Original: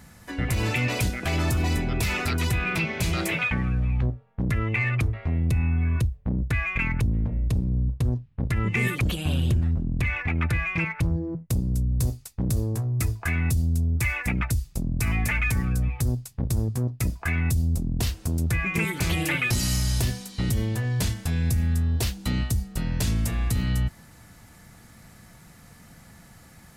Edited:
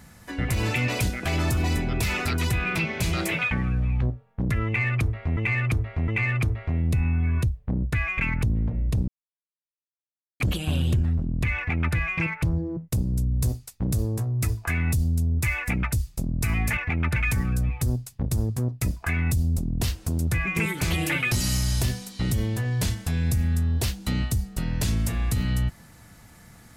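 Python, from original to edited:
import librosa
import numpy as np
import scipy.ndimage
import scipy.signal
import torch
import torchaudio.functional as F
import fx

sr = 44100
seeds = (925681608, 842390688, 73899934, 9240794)

y = fx.edit(x, sr, fx.repeat(start_s=4.66, length_s=0.71, count=3),
    fx.silence(start_s=7.66, length_s=1.32),
    fx.duplicate(start_s=10.15, length_s=0.39, to_s=15.35), tone=tone)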